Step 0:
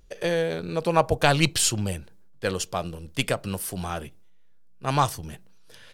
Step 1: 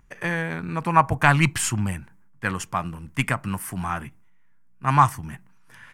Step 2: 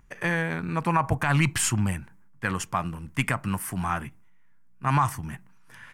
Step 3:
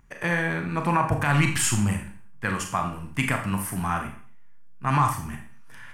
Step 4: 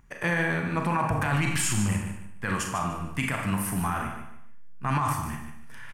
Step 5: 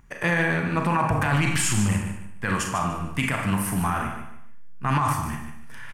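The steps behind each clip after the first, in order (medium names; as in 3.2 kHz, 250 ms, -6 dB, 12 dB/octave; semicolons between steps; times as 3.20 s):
graphic EQ 125/250/500/1000/2000/4000/8000 Hz +8/+7/-11/+12/+11/-11/+3 dB; trim -3.5 dB
peak limiter -12 dBFS, peak gain reduction 10.5 dB
reverberation RT60 0.45 s, pre-delay 27 ms, DRR 3.5 dB
peak limiter -17 dBFS, peak gain reduction 8.5 dB; on a send: feedback delay 148 ms, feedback 26%, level -9 dB
loudspeaker Doppler distortion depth 0.11 ms; trim +3.5 dB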